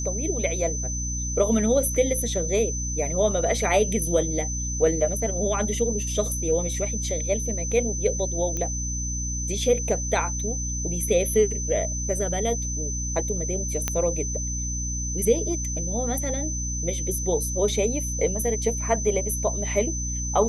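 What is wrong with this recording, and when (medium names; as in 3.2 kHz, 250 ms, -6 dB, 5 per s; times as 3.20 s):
hum 60 Hz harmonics 5 -30 dBFS
whine 6.1 kHz -30 dBFS
8.57 s: pop -16 dBFS
13.88 s: pop -8 dBFS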